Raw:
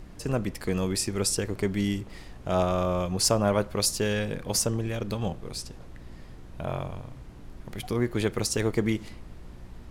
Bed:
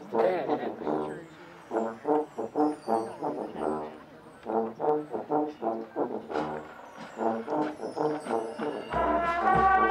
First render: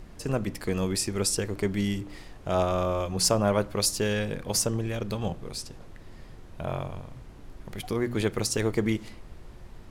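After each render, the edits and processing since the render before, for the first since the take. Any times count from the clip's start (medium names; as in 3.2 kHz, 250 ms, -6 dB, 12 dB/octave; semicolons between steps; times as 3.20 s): de-hum 60 Hz, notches 5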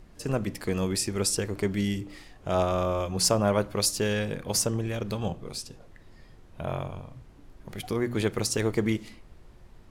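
noise print and reduce 6 dB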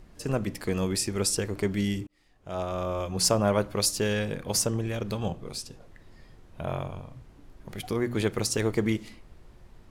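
2.07–3.26 s: fade in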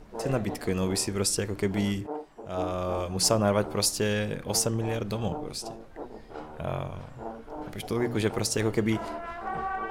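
add bed -10 dB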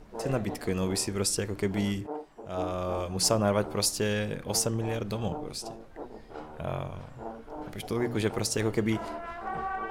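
trim -1.5 dB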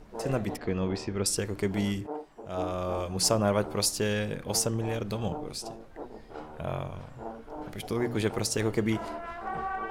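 0.57–1.26 s: distance through air 200 m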